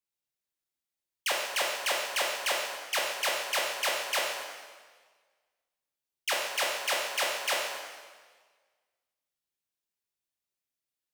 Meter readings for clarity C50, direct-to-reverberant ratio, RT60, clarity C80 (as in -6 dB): 1.0 dB, -2.5 dB, 1.5 s, 3.5 dB